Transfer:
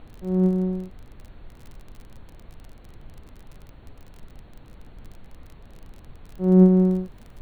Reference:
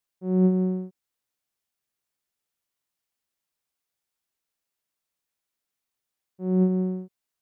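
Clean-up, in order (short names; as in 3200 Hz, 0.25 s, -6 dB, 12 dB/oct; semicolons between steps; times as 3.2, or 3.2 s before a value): de-click; noise print and reduce 30 dB; gain 0 dB, from 6.38 s -7.5 dB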